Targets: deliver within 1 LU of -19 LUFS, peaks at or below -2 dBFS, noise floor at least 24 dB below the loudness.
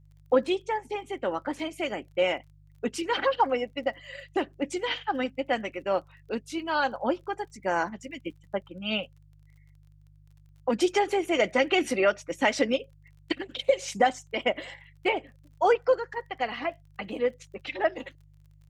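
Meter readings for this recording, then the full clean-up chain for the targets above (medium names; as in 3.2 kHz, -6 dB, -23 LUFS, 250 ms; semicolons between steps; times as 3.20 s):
tick rate 33 per s; hum 50 Hz; highest harmonic 150 Hz; hum level -54 dBFS; loudness -28.5 LUFS; peak level -10.5 dBFS; loudness target -19.0 LUFS
-> de-click; de-hum 50 Hz, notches 3; trim +9.5 dB; peak limiter -2 dBFS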